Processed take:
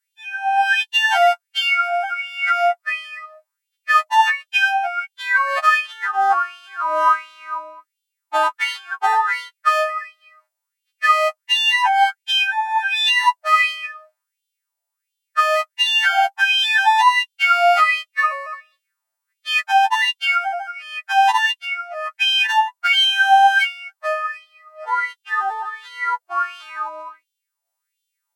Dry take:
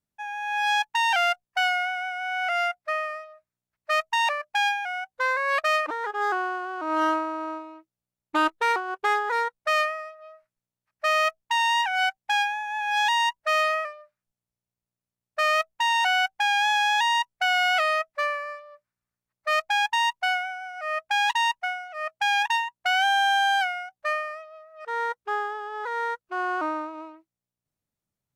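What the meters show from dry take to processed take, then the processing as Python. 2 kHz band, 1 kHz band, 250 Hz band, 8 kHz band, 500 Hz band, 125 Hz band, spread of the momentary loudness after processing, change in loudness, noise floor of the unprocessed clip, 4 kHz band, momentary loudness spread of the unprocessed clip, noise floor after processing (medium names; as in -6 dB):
+6.5 dB, +7.0 dB, under -15 dB, +3.0 dB, +5.0 dB, no reading, 14 LU, +7.0 dB, under -85 dBFS, +8.0 dB, 12 LU, -81 dBFS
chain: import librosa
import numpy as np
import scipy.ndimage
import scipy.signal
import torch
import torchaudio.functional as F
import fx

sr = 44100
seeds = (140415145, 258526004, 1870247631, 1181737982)

y = fx.freq_snap(x, sr, grid_st=2)
y = fx.filter_lfo_highpass(y, sr, shape='sine', hz=1.4, low_hz=700.0, high_hz=3300.0, q=6.2)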